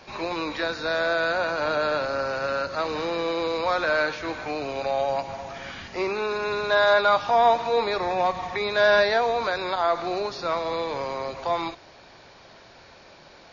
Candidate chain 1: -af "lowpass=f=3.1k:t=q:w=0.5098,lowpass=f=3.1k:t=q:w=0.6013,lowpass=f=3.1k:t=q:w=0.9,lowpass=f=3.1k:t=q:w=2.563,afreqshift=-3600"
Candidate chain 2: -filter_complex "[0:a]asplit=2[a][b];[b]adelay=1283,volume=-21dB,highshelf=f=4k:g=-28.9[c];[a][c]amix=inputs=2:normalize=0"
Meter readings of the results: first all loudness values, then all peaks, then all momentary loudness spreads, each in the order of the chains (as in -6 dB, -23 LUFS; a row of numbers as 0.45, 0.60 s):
-22.0, -24.5 LUFS; -9.5, -7.5 dBFS; 11, 11 LU